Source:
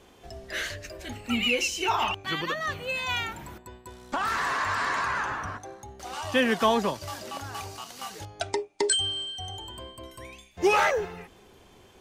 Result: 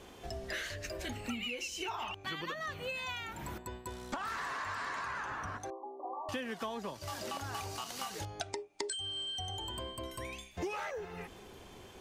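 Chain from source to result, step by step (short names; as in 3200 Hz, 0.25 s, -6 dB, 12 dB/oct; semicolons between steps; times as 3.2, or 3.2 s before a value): compressor 12:1, threshold -38 dBFS, peak gain reduction 20.5 dB; 5.7–6.29 brick-wall FIR band-pass 260–1200 Hz; gain +2 dB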